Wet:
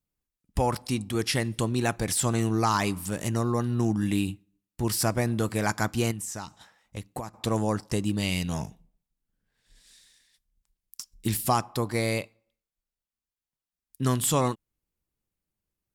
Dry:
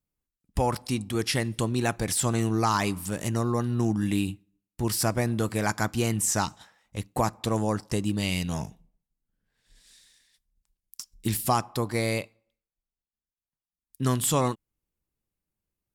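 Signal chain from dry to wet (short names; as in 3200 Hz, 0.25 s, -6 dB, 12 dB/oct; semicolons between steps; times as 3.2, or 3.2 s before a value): 6.11–7.34 compressor 16:1, threshold -32 dBFS, peak gain reduction 13.5 dB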